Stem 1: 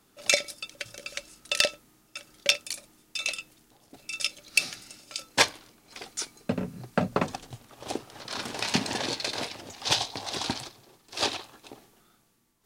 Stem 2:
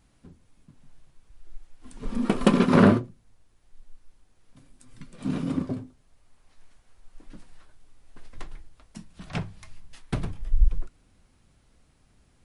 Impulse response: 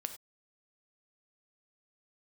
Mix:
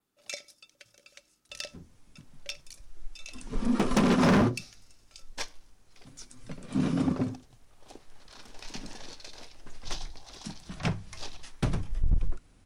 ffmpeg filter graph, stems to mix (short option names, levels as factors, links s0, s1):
-filter_complex "[0:a]volume=0.119,asplit=2[s0][s1];[s1]volume=0.2[s2];[1:a]volume=10.6,asoftclip=hard,volume=0.0944,adelay=1500,volume=1.19[s3];[2:a]atrim=start_sample=2205[s4];[s2][s4]afir=irnorm=-1:irlink=0[s5];[s0][s3][s5]amix=inputs=3:normalize=0,adynamicequalizer=threshold=0.001:dfrequency=5800:dqfactor=2.7:tfrequency=5800:tqfactor=2.7:attack=5:release=100:ratio=0.375:range=3:mode=boostabove:tftype=bell"